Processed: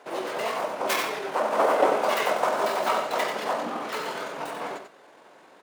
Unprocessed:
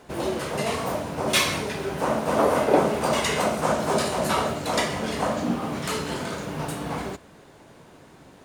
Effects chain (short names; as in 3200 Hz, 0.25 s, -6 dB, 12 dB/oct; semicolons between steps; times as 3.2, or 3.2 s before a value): tracing distortion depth 0.3 ms; high shelf 3900 Hz -9.5 dB; tempo 1.5×; HPF 520 Hz 12 dB/oct; on a send: echo 91 ms -7 dB; on the sum: gain +2 dB